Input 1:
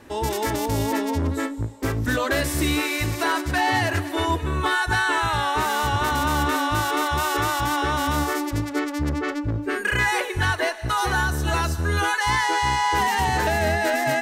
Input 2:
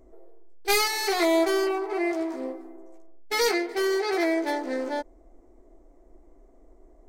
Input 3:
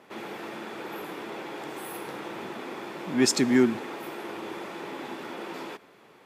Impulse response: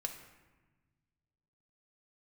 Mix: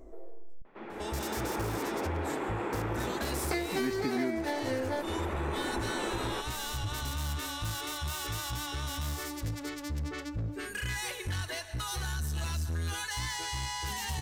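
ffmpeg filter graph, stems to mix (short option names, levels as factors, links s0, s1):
-filter_complex "[0:a]acrossover=split=160|3000[s0][s1][s2];[s1]acompressor=threshold=0.0158:ratio=6[s3];[s0][s3][s2]amix=inputs=3:normalize=0,asoftclip=type=tanh:threshold=0.0562,adelay=900,volume=0.596,asplit=2[s4][s5];[s5]volume=0.299[s6];[1:a]volume=1.26,asplit=3[s7][s8][s9];[s7]atrim=end=0.62,asetpts=PTS-STARTPTS,afade=t=out:st=0.616:d=0.004:c=hsin[s10];[s8]atrim=start=0.62:end=3.51,asetpts=PTS-STARTPTS,volume=0[s11];[s9]atrim=start=3.51,asetpts=PTS-STARTPTS,afade=t=in:d=0.004:c=hsin[s12];[s10][s11][s12]concat=n=3:v=0:a=1,asplit=2[s13][s14];[s14]volume=0.266[s15];[2:a]lowpass=2000,dynaudnorm=f=130:g=9:m=3.55,adelay=650,volume=0.531[s16];[3:a]atrim=start_sample=2205[s17];[s6][s15]amix=inputs=2:normalize=0[s18];[s18][s17]afir=irnorm=-1:irlink=0[s19];[s4][s13][s16][s19]amix=inputs=4:normalize=0,acompressor=threshold=0.0355:ratio=6"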